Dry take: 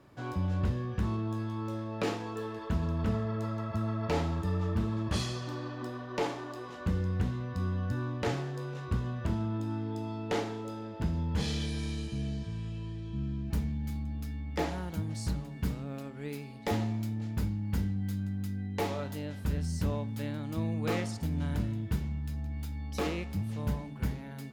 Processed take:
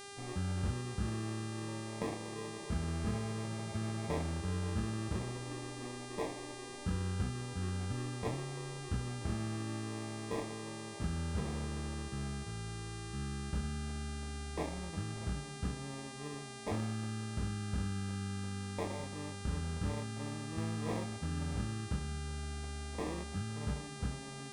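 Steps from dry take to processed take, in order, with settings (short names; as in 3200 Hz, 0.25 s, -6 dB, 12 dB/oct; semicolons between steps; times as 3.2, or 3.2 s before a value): sample-and-hold 30×; LPF 1400 Hz 6 dB/oct; buzz 400 Hz, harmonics 26, -44 dBFS -3 dB/oct; gain -5.5 dB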